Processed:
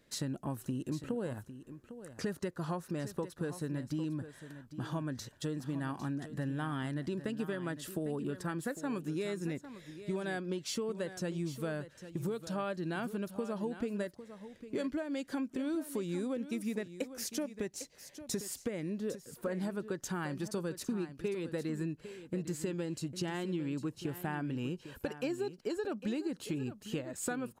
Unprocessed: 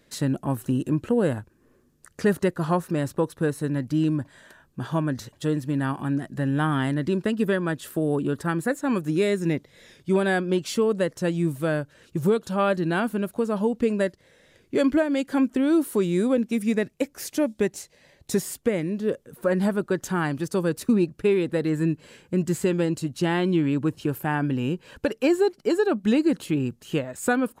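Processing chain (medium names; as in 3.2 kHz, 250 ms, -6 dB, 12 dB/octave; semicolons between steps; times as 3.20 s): dynamic bell 5.5 kHz, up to +5 dB, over -51 dBFS, Q 1.2; compression, threshold -26 dBFS, peak gain reduction 10 dB; on a send: delay 803 ms -12.5 dB; on the sum: trim -7 dB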